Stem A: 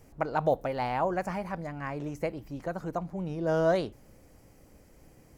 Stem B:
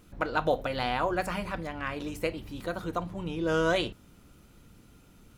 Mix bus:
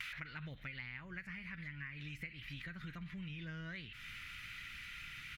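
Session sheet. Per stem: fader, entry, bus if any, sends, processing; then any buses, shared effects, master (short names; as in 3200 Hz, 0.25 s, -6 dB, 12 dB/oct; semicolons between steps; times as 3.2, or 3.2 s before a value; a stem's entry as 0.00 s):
0.0 dB, 0.00 s, no send, dry
-11.0 dB, 5.2 ms, no send, steep high-pass 630 Hz 48 dB/oct; fast leveller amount 100%; auto duck -13 dB, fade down 0.85 s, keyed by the first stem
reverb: off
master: EQ curve 150 Hz 0 dB, 750 Hz -30 dB, 2000 Hz +11 dB, 7900 Hz -15 dB; compressor, threshold -44 dBFS, peak gain reduction 15 dB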